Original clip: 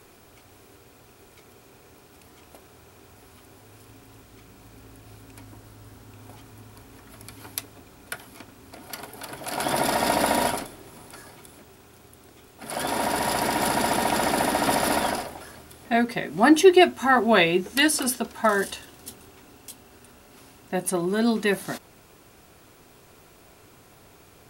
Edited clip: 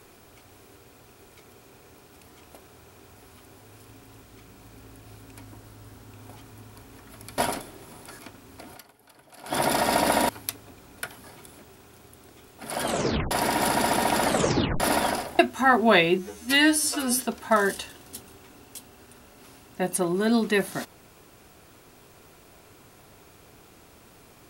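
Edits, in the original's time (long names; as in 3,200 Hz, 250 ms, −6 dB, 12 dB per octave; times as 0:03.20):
0:07.38–0:08.33: swap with 0:10.43–0:11.24
0:08.88–0:09.68: duck −17 dB, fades 0.36 s exponential
0:12.82: tape stop 0.49 s
0:14.25: tape stop 0.55 s
0:15.39–0:16.82: remove
0:17.61–0:18.11: time-stretch 2×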